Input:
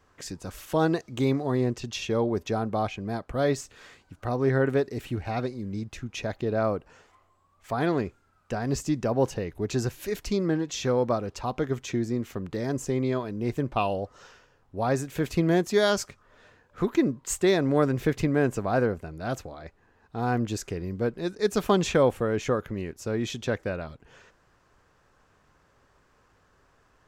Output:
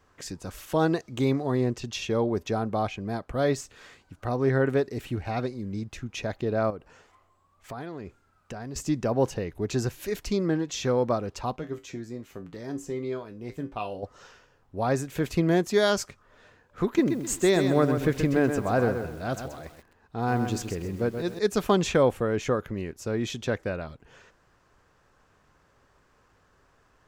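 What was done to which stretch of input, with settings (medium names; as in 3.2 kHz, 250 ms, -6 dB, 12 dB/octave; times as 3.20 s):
6.70–8.76 s: compression 5:1, threshold -34 dBFS
11.56–14.03 s: feedback comb 56 Hz, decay 0.22 s, harmonics odd, mix 80%
16.85–21.39 s: bit-crushed delay 129 ms, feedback 35%, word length 8-bit, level -7 dB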